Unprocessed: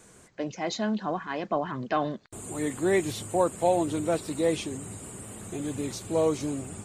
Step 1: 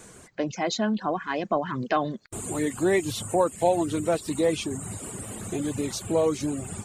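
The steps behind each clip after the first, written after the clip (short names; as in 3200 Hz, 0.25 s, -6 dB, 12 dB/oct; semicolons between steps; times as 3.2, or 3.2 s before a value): in parallel at +1.5 dB: compressor, threshold -33 dBFS, peak gain reduction 14 dB; on the sum: reverb removal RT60 0.67 s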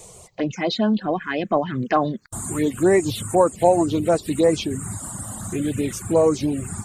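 envelope phaser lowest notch 240 Hz, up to 3400 Hz, full sweep at -19.5 dBFS; gain +6.5 dB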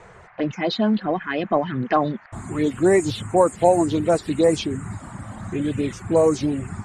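band noise 660–2100 Hz -50 dBFS; low-pass opened by the level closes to 2200 Hz, open at -12.5 dBFS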